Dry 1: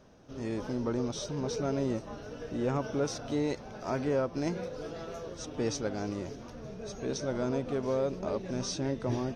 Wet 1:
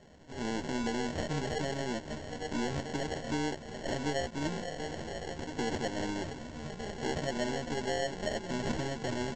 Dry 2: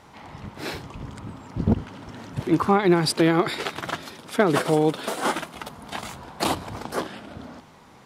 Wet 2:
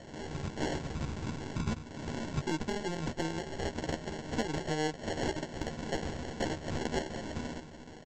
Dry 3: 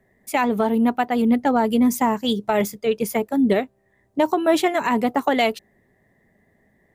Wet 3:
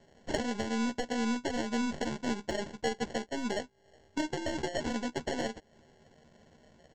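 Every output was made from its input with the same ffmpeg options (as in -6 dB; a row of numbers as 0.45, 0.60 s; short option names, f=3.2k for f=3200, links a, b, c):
-filter_complex "[0:a]aeval=exprs='if(lt(val(0),0),0.708*val(0),val(0))':c=same,acompressor=threshold=-32dB:ratio=20,highshelf=f=4.7k:g=7.5,aresample=16000,acrusher=samples=13:mix=1:aa=0.000001,aresample=44100,aeval=exprs='0.106*(cos(1*acos(clip(val(0)/0.106,-1,1)))-cos(1*PI/2))+0.0075*(cos(2*acos(clip(val(0)/0.106,-1,1)))-cos(2*PI/2))+0.0133*(cos(4*acos(clip(val(0)/0.106,-1,1)))-cos(4*PI/2))+0.0075*(cos(6*acos(clip(val(0)/0.106,-1,1)))-cos(6*PI/2))':c=same,asplit=2[a][b];[b]adelay=13,volume=-6dB[c];[a][c]amix=inputs=2:normalize=0,volume=1.5dB"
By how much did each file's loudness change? -2.0, -12.0, -14.0 LU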